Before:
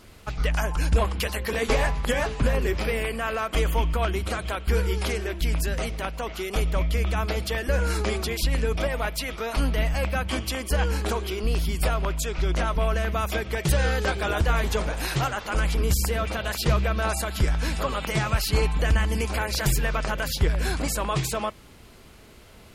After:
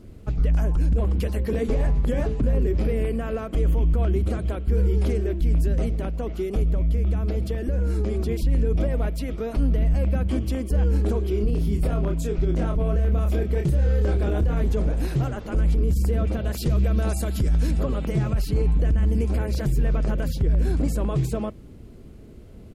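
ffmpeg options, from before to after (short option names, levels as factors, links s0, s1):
-filter_complex "[0:a]asettb=1/sr,asplit=3[s0][s1][s2];[s0]atrim=end=6.634[s3];[s1]atrim=start=6.63:end=8.29,asetpts=PTS-STARTPTS,afade=t=in:d=0.004:c=qsin,afade=t=out:st=1.656:d=0.004:c=qsin,acompressor=threshold=0.0562:ratio=6:attack=3.2:release=140:knee=1:detection=peak[s4];[s2]atrim=start=8.286[s5];[s3][s4]acrossfade=d=0.004:c1=hsin:c2=qsin[s6];[s6][s5]acrossfade=d=0.004:c1=qsin:c2=hsin,asplit=3[s7][s8][s9];[s7]afade=t=out:st=11.33:d=0.02[s10];[s8]asplit=2[s11][s12];[s12]adelay=29,volume=0.596[s13];[s11][s13]amix=inputs=2:normalize=0,afade=t=in:st=11.33:d=0.02,afade=t=out:st=14.6:d=0.02[s14];[s9]afade=t=in:st=14.6:d=0.02[s15];[s10][s14][s15]amix=inputs=3:normalize=0,asettb=1/sr,asplit=3[s16][s17][s18];[s16]atrim=end=16.544[s19];[s17]atrim=start=16.54:end=17.71,asetpts=PTS-STARTPTS,afade=t=in:d=0.004:c=qsin,afade=t=out:st=1.166:d=0.004:c=qsin,highshelf=f=3100:g=10[s20];[s18]atrim=start=17.706[s21];[s19][s20]acrossfade=d=0.004:c1=hsin:c2=qsin[s22];[s22][s21]acrossfade=d=0.004:c1=qsin:c2=hsin,firequalizer=gain_entry='entry(290,0);entry(890,-16);entry(7800,-9)':delay=0.05:min_phase=1,alimiter=limit=0.0794:level=0:latency=1:release=31,highshelf=f=2600:g=-9.5,volume=2.37"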